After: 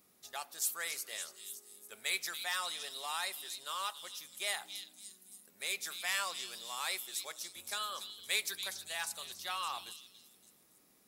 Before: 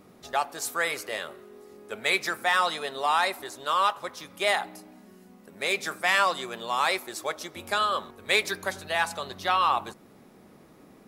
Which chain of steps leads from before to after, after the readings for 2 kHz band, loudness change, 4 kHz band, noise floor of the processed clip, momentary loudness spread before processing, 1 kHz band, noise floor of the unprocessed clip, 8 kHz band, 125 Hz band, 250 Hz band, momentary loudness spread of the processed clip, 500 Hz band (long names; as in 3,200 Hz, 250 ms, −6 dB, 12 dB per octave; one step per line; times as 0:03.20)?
−12.5 dB, −11.0 dB, −6.5 dB, −67 dBFS, 11 LU, −16.5 dB, −54 dBFS, −0.5 dB, below −20 dB, −21.0 dB, 12 LU, −19.5 dB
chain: first-order pre-emphasis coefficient 0.9
echo through a band-pass that steps 282 ms, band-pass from 4,300 Hz, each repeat 0.7 octaves, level −5 dB
level −1.5 dB